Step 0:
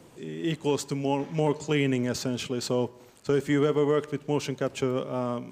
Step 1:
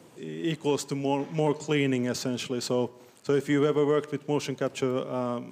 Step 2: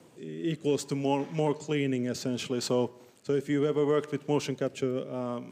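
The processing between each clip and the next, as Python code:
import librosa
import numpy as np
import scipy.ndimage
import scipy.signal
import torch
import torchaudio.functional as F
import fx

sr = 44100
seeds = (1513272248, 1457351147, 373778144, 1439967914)

y1 = scipy.signal.sosfilt(scipy.signal.butter(2, 120.0, 'highpass', fs=sr, output='sos'), x)
y2 = fx.rotary(y1, sr, hz=0.65)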